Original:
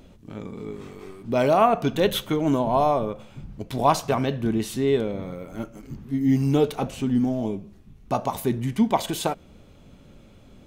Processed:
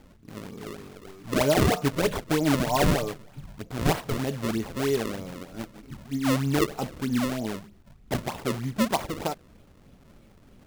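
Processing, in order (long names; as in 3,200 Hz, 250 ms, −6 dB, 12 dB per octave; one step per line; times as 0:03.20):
variable-slope delta modulation 64 kbit/s
0:01.19–0:03.41: comb filter 6.7 ms, depth 57%
sample-and-hold swept by an LFO 32×, swing 160% 3.2 Hz
level −4 dB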